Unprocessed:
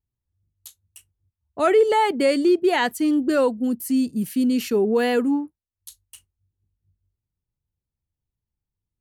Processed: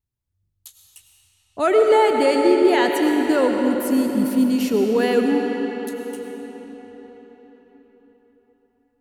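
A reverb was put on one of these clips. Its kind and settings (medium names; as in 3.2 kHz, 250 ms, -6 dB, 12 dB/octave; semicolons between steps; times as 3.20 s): algorithmic reverb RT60 4.8 s, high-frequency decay 0.75×, pre-delay 60 ms, DRR 2 dB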